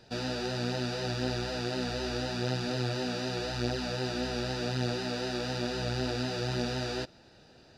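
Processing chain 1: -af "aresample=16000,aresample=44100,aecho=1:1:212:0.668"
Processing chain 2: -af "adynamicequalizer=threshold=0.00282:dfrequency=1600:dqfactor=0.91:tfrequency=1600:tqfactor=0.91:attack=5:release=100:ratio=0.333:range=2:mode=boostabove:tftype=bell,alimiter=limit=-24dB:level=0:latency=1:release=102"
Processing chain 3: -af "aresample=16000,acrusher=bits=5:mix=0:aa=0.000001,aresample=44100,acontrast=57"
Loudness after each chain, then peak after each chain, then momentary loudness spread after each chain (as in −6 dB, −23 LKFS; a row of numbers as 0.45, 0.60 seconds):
−31.0, −35.0, −25.0 LKFS; −15.5, −24.0, −10.0 dBFS; 2, 1, 1 LU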